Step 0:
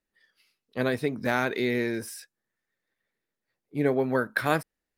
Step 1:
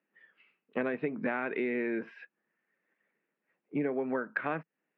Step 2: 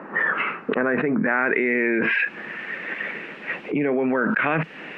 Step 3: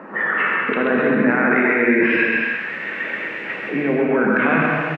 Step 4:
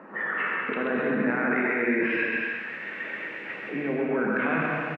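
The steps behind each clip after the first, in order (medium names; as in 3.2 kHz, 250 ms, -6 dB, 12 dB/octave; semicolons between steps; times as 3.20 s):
Chebyshev band-pass 160–2700 Hz, order 4; compression 10:1, threshold -34 dBFS, peak gain reduction 15.5 dB; trim +5.5 dB
low-pass sweep 1.1 kHz -> 2.8 kHz, 0.00–2.60 s; level flattener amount 100%; trim +5 dB
on a send: delay 132 ms -4.5 dB; on the sum: gated-style reverb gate 380 ms flat, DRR -0.5 dB
delay 227 ms -13 dB; trim -9 dB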